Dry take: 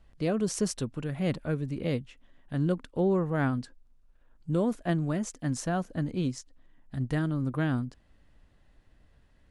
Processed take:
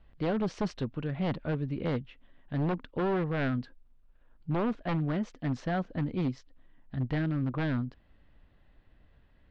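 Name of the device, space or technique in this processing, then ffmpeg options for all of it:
synthesiser wavefolder: -af "aeval=exprs='0.0708*(abs(mod(val(0)/0.0708+3,4)-2)-1)':channel_layout=same,lowpass=frequency=3900:width=0.5412,lowpass=frequency=3900:width=1.3066"

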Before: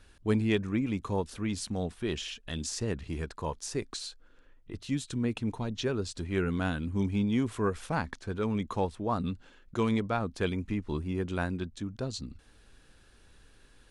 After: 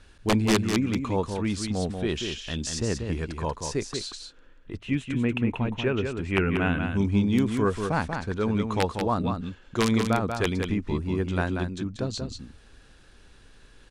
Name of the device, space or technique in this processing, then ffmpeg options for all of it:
overflowing digital effects unit: -filter_complex "[0:a]aeval=exprs='(mod(7.94*val(0)+1,2)-1)/7.94':channel_layout=same,lowpass=8700,asettb=1/sr,asplit=3[link_01][link_02][link_03];[link_01]atrim=end=4.784[link_04];[link_02]atrim=start=4.78:end=6.83,asetpts=PTS-STARTPTS,afade=type=in:duration=0.004:curve=qsin,afade=type=out:start_time=2.046:duration=0.004:curve=qsin,highshelf=frequency=3400:width_type=q:width=3:gain=-9[link_05];[link_03]atrim=start=6.826[link_06];[link_04][link_05]acrossfade=duration=0.004:curve1=hsin:curve2=qsin[link_07];[link_07][link_06]acrossfade=duration=0.004:curve1=qsin:curve2=hsin,aecho=1:1:187:0.501,volume=4.5dB"

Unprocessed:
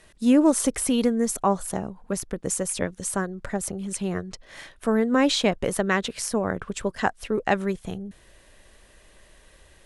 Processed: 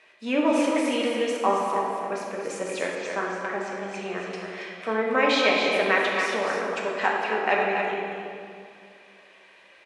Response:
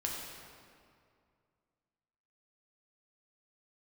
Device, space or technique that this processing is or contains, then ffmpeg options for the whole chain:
station announcement: -filter_complex "[0:a]highpass=480,lowpass=3800,equalizer=frequency=2400:width_type=o:width=0.26:gain=10.5,aecho=1:1:242|277:0.251|0.447[link_01];[1:a]atrim=start_sample=2205[link_02];[link_01][link_02]afir=irnorm=-1:irlink=0,asettb=1/sr,asplit=3[link_03][link_04][link_05];[link_03]atrim=end=2.954[link_06];[link_04]atrim=start=2.95:end=4.33,asetpts=PTS-STARTPTS,afade=type=in:duration=0.004:curve=qsin,afade=type=out:start_time=1.376:duration=0.004:curve=qsin,lowpass=frequency=6900:width=0.5412,lowpass=frequency=6900:width=1.3066[link_07];[link_05]atrim=start=4.326[link_08];[link_06][link_07]acrossfade=duration=0.004:curve1=hsin:curve2=qsin[link_09];[link_09][link_08]acrossfade=duration=0.004:curve1=qsin:curve2=hsin"

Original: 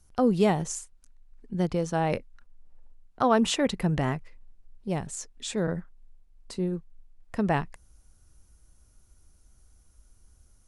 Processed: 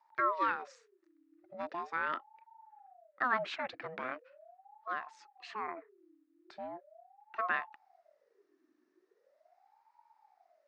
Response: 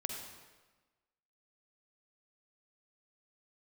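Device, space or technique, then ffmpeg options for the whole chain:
voice changer toy: -af "aeval=exprs='val(0)*sin(2*PI*600*n/s+600*0.5/0.4*sin(2*PI*0.4*n/s))':channel_layout=same,highpass=470,equalizer=frequency=490:width_type=q:width=4:gain=-8,equalizer=frequency=820:width_type=q:width=4:gain=-4,equalizer=frequency=1300:width_type=q:width=4:gain=4,equalizer=frequency=1800:width_type=q:width=4:gain=6,equalizer=frequency=3200:width_type=q:width=4:gain=-6,lowpass=frequency=3900:width=0.5412,lowpass=frequency=3900:width=1.3066,volume=-5.5dB"

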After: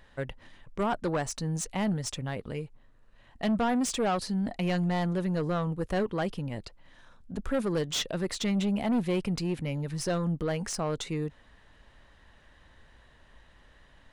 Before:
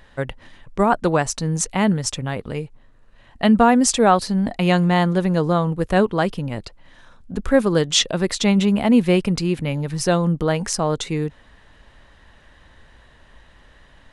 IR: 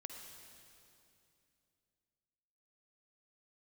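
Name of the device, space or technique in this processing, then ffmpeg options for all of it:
saturation between pre-emphasis and de-emphasis: -af "highshelf=frequency=5800:gain=10.5,asoftclip=type=tanh:threshold=-15dB,highshelf=frequency=5800:gain=-10.5,volume=-7.5dB"

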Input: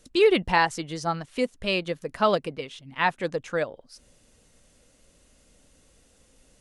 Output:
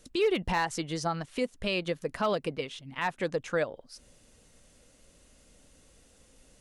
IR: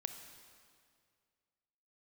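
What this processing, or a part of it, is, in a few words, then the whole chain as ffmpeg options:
clipper into limiter: -af "asoftclip=type=hard:threshold=-12dB,alimiter=limit=-19.5dB:level=0:latency=1:release=112"

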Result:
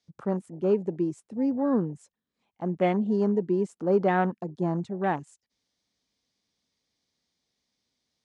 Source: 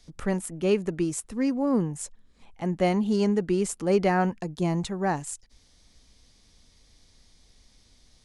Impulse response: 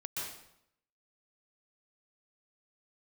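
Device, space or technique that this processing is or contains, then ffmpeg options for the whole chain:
over-cleaned archive recording: -af "highpass=160,lowpass=7000,afwtdn=0.02"

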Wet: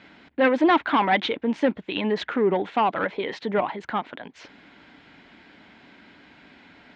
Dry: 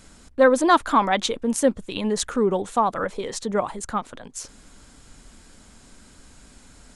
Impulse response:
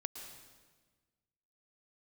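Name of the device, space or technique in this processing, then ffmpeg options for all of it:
overdrive pedal into a guitar cabinet: -filter_complex "[0:a]asplit=2[link_01][link_02];[link_02]highpass=frequency=720:poles=1,volume=17dB,asoftclip=type=tanh:threshold=-4.5dB[link_03];[link_01][link_03]amix=inputs=2:normalize=0,lowpass=frequency=3200:poles=1,volume=-6dB,highpass=92,equalizer=frequency=170:width_type=q:width=4:gain=3,equalizer=frequency=300:width_type=q:width=4:gain=5,equalizer=frequency=510:width_type=q:width=4:gain=-5,equalizer=frequency=1200:width_type=q:width=4:gain=-8,equalizer=frequency=2100:width_type=q:width=4:gain=4,lowpass=frequency=3500:width=0.5412,lowpass=frequency=3500:width=1.3066,volume=-4dB"

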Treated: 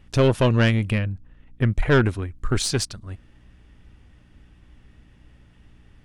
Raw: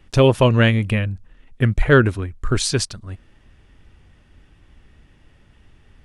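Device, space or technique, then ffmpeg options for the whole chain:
valve amplifier with mains hum: -filter_complex "[0:a]asettb=1/sr,asplit=3[link_01][link_02][link_03];[link_01]atrim=end=0.984[link_04];[link_02]atrim=start=0.98:end=1.74,asetpts=PTS-STARTPTS,afade=type=in:duration=0.004:curve=qsin,afade=type=out:start_time=0.756:duration=0.004:curve=qsin,highshelf=frequency=4100:gain=-9.5[link_05];[link_03]atrim=start=1.736[link_06];[link_04][link_05]acrossfade=duration=0.004:curve1=hsin:curve2=qsin[link_07];[link_07][link_06]acrossfade=duration=0.004:curve1=qsin:curve2=hsin,aeval=exprs='(tanh(2.82*val(0)+0.35)-tanh(0.35))/2.82':channel_layout=same,aeval=exprs='val(0)+0.00251*(sin(2*PI*60*n/s)+sin(2*PI*2*60*n/s)/2+sin(2*PI*3*60*n/s)/3+sin(2*PI*4*60*n/s)/4+sin(2*PI*5*60*n/s)/5)':channel_layout=same,volume=-1.5dB"

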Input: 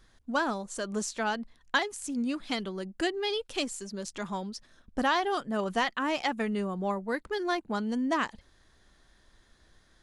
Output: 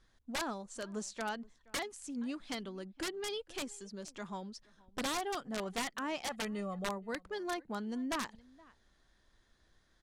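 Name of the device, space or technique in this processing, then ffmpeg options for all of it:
overflowing digital effects unit: -filter_complex "[0:a]asettb=1/sr,asplit=3[link_01][link_02][link_03];[link_01]atrim=end=6.274[link_04];[link_02]atrim=start=6.27:end=6.89,asetpts=PTS-STARTPTS,afade=type=in:duration=0.004:curve=qsin,afade=type=out:start_time=0.616:duration=0.004:curve=qsin,aecho=1:1:1.6:0.9,atrim=end_sample=27342[link_05];[link_03]atrim=start=6.886[link_06];[link_04][link_05]acrossfade=duration=0.004:curve1=hsin:curve2=qsin[link_07];[link_07][link_06]acrossfade=duration=0.004:curve1=qsin:curve2=hsin,asplit=2[link_08][link_09];[link_09]adelay=472.3,volume=-24dB,highshelf=frequency=4000:gain=-10.6[link_10];[link_08][link_10]amix=inputs=2:normalize=0,aeval=exprs='(mod(10.6*val(0)+1,2)-1)/10.6':channel_layout=same,lowpass=9700,volume=-8dB"

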